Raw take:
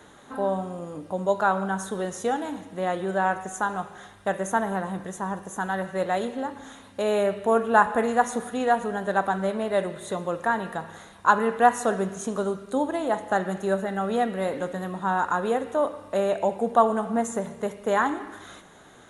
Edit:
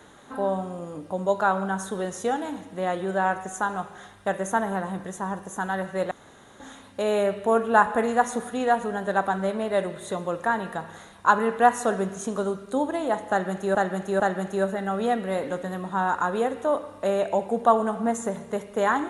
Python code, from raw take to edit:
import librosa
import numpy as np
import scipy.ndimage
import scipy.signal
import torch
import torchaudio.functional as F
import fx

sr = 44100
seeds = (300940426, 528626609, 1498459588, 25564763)

y = fx.edit(x, sr, fx.room_tone_fill(start_s=6.11, length_s=0.49),
    fx.repeat(start_s=13.3, length_s=0.45, count=3), tone=tone)